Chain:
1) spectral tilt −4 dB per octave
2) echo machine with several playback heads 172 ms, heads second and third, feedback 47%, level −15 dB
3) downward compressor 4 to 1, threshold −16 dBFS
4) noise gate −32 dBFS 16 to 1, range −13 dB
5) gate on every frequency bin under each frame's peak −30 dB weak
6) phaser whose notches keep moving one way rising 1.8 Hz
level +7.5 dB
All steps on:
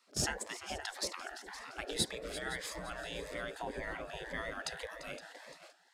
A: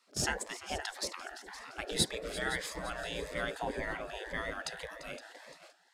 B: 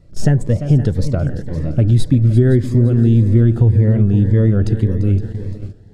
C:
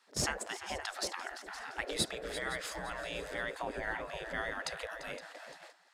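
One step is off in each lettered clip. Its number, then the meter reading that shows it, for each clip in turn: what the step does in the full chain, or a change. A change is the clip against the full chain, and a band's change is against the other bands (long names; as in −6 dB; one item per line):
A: 3, average gain reduction 2.0 dB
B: 5, change in crest factor −12.5 dB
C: 6, 2 kHz band +3.0 dB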